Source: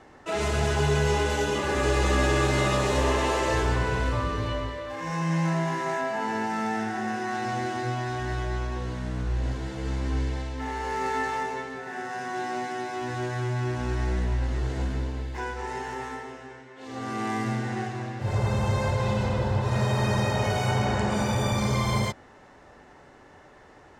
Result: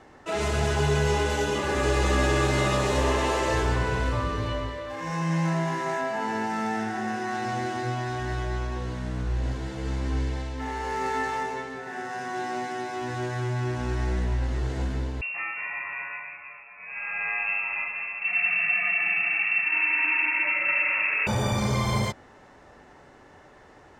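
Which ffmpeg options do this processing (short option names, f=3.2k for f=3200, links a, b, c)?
-filter_complex "[0:a]asettb=1/sr,asplit=3[a][b][c];[a]atrim=end=15.214[d];[b]atrim=start=15.21:end=21.27,asetpts=PTS-STARTPTS,afade=t=in:d=0.004:c=qsin,afade=t=out:st=6.056:d=0.004:c=qsin,lowpass=f=2.4k:t=q:w=0.5098,lowpass=f=2.4k:t=q:w=0.6013,lowpass=f=2.4k:t=q:w=0.9,lowpass=f=2.4k:t=q:w=2.563,afreqshift=-2800[e];[c]atrim=start=21.266[f];[d][e]acrossfade=d=0.004:c1=hsin:c2=qsin[g];[g][f]acrossfade=d=0.004:c1=qsin:c2=hsin"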